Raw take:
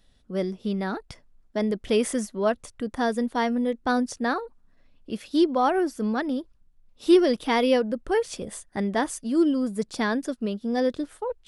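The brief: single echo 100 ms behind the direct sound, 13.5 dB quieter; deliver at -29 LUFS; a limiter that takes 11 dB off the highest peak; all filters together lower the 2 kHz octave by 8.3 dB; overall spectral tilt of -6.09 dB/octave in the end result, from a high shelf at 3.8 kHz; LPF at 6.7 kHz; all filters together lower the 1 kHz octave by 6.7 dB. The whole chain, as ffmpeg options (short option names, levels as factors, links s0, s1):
-af "lowpass=6700,equalizer=f=1000:t=o:g=-8,equalizer=f=2000:t=o:g=-5.5,highshelf=f=3800:g=-9,alimiter=limit=0.1:level=0:latency=1,aecho=1:1:100:0.211,volume=1.06"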